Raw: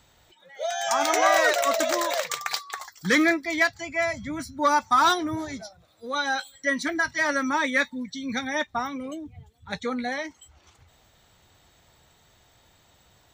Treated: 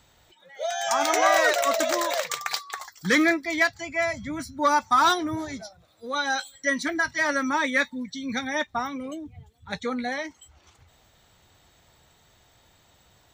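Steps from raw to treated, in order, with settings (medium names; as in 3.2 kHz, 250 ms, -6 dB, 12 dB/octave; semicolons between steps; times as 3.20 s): 6.29–6.78 s: dynamic bell 6.4 kHz, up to +6 dB, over -49 dBFS, Q 1.5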